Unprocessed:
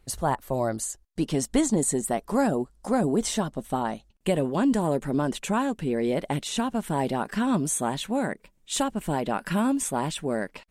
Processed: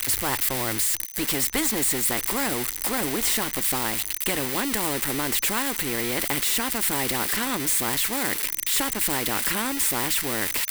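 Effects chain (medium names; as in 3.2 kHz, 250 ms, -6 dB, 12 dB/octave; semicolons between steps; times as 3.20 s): zero-crossing glitches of -23 dBFS; whistle 6.1 kHz -42 dBFS; graphic EQ with 31 bands 100 Hz +9 dB, 160 Hz -11 dB, 315 Hz +8 dB, 630 Hz -9 dB, 2 kHz +11 dB, 6.3 kHz -10 dB; spectrum-flattening compressor 2:1; trim -2 dB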